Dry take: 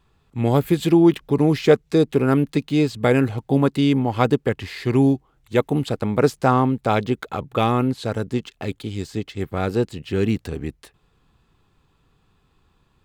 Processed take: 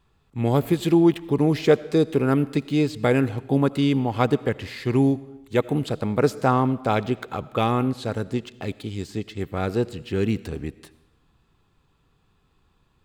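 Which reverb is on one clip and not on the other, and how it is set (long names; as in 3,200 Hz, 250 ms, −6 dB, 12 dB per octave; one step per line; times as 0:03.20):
comb and all-pass reverb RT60 0.97 s, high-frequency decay 0.95×, pre-delay 40 ms, DRR 18 dB
level −2.5 dB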